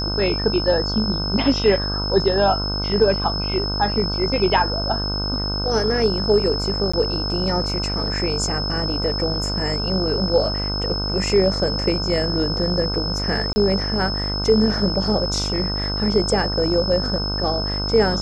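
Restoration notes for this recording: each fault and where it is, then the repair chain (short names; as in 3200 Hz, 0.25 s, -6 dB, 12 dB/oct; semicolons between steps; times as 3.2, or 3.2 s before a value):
buzz 50 Hz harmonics 31 -26 dBFS
tone 5200 Hz -25 dBFS
6.92–6.93 gap 15 ms
13.53–13.56 gap 30 ms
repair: de-hum 50 Hz, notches 31; notch 5200 Hz, Q 30; interpolate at 6.92, 15 ms; interpolate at 13.53, 30 ms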